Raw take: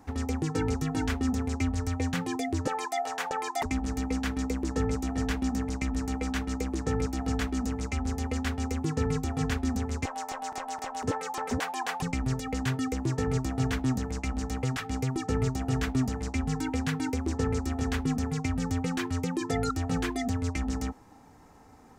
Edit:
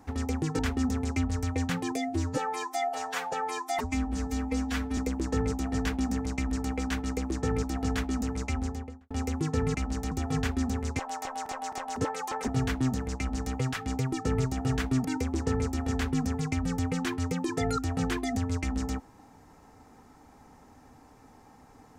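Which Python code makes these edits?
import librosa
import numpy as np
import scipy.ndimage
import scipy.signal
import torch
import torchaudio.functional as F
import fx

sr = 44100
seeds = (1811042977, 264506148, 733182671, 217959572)

y = fx.studio_fade_out(x, sr, start_s=7.96, length_s=0.58)
y = fx.edit(y, sr, fx.cut(start_s=0.59, length_s=0.44),
    fx.stretch_span(start_s=2.4, length_s=2.01, factor=1.5),
    fx.cut(start_s=11.54, length_s=1.97),
    fx.duplicate(start_s=14.21, length_s=0.37, to_s=9.18),
    fx.cut(start_s=16.08, length_s=0.89), tone=tone)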